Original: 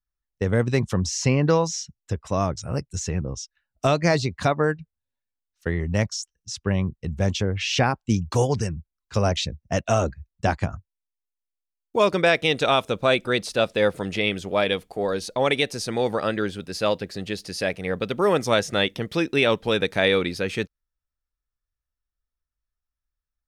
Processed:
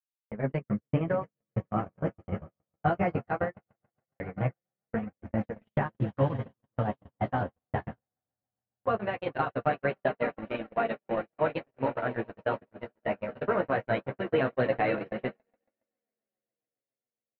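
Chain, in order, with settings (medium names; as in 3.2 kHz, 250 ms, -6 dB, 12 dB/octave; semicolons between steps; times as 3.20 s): rotating-head pitch shifter -3 st; low-pass 1.5 kHz 24 dB/octave; compression 6:1, threshold -24 dBFS, peak gain reduction 9.5 dB; doubling 20 ms -8 dB; echo with a slow build-up 187 ms, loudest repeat 5, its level -13.5 dB; gate -26 dBFS, range -58 dB; speed mistake 33 rpm record played at 45 rpm; flange 0.19 Hz, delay 3.2 ms, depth 9.9 ms, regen -25%; trim +4 dB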